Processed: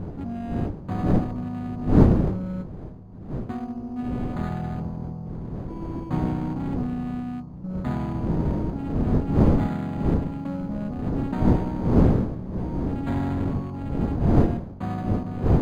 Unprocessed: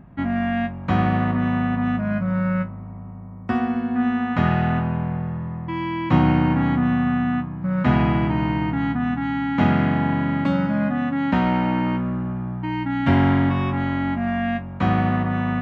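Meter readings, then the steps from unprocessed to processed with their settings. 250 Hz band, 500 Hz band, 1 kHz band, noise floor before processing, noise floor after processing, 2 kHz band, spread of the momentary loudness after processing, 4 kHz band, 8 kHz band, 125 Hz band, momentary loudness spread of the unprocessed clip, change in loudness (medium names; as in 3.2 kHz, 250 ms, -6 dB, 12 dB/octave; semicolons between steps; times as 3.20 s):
-4.5 dB, -0.5 dB, -10.0 dB, -35 dBFS, -38 dBFS, -16.0 dB, 14 LU, under -10 dB, no reading, -1.5 dB, 8 LU, -4.0 dB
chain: local Wiener filter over 25 samples; wind noise 230 Hz -16 dBFS; decimation joined by straight lines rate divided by 8×; trim -9 dB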